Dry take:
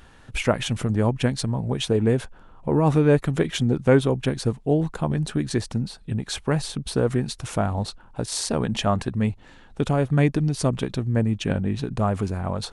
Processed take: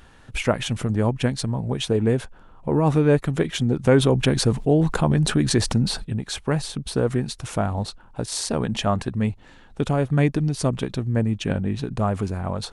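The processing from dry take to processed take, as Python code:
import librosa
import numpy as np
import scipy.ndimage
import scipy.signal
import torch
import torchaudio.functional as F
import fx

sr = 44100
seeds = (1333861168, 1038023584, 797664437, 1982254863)

y = fx.env_flatten(x, sr, amount_pct=50, at=(3.83, 6.03), fade=0.02)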